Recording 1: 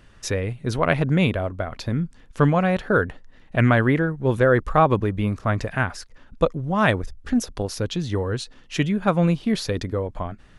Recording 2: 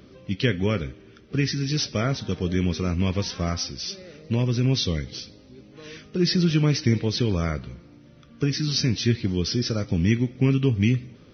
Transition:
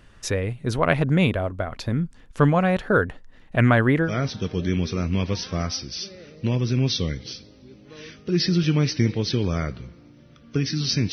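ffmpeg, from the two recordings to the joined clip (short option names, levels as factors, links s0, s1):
-filter_complex "[0:a]apad=whole_dur=11.12,atrim=end=11.12,atrim=end=4.17,asetpts=PTS-STARTPTS[s0];[1:a]atrim=start=1.9:end=8.99,asetpts=PTS-STARTPTS[s1];[s0][s1]acrossfade=d=0.14:c1=tri:c2=tri"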